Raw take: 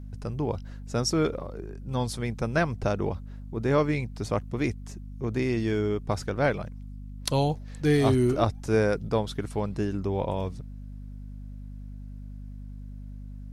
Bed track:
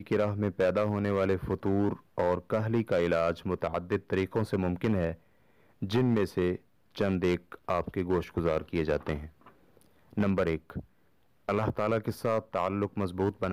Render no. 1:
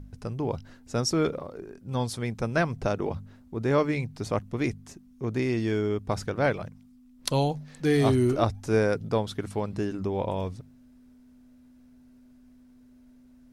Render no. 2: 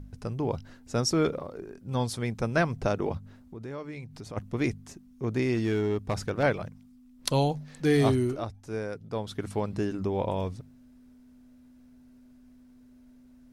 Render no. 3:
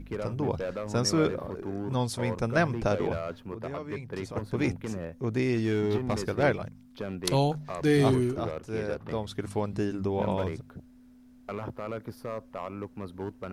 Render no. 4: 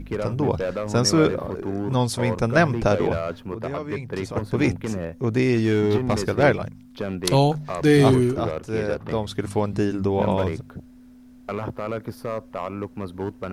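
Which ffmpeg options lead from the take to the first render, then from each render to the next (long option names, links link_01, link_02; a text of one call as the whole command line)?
ffmpeg -i in.wav -af "bandreject=frequency=50:width_type=h:width=4,bandreject=frequency=100:width_type=h:width=4,bandreject=frequency=150:width_type=h:width=4,bandreject=frequency=200:width_type=h:width=4" out.wav
ffmpeg -i in.wav -filter_complex "[0:a]asplit=3[link_01][link_02][link_03];[link_01]afade=type=out:start_time=3.17:duration=0.02[link_04];[link_02]acompressor=threshold=-42dB:ratio=2.5:attack=3.2:release=140:knee=1:detection=peak,afade=type=in:start_time=3.17:duration=0.02,afade=type=out:start_time=4.36:duration=0.02[link_05];[link_03]afade=type=in:start_time=4.36:duration=0.02[link_06];[link_04][link_05][link_06]amix=inputs=3:normalize=0,asettb=1/sr,asplit=3[link_07][link_08][link_09];[link_07]atrim=end=5.554[link_10];[link_08]atrim=start=5.55:end=6.43,asetpts=PTS-STARTPTS,afade=type=in:duration=0.004:curve=qsin,afade=type=out:start_time=0.876:duration=0.004:curve=qsin,asoftclip=type=hard:threshold=-21.5dB[link_11];[link_09]atrim=start=6.426[link_12];[link_10][link_11]acrossfade=duration=0.004:curve1=hsin:curve2=qsin[link_13];[link_13][link_12]acrossfade=duration=0.004:curve1=qsin:curve2=hsin,asplit=3[link_14][link_15][link_16];[link_14]atrim=end=8.43,asetpts=PTS-STARTPTS,afade=type=out:start_time=8.01:duration=0.42:silence=0.298538[link_17];[link_15]atrim=start=8.43:end=9.07,asetpts=PTS-STARTPTS,volume=-10.5dB[link_18];[link_16]atrim=start=9.07,asetpts=PTS-STARTPTS,afade=type=in:duration=0.42:silence=0.298538[link_19];[link_17][link_18][link_19]concat=n=3:v=0:a=1" out.wav
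ffmpeg -i in.wav -i bed.wav -filter_complex "[1:a]volume=-7.5dB[link_01];[0:a][link_01]amix=inputs=2:normalize=0" out.wav
ffmpeg -i in.wav -af "volume=7dB,alimiter=limit=-3dB:level=0:latency=1" out.wav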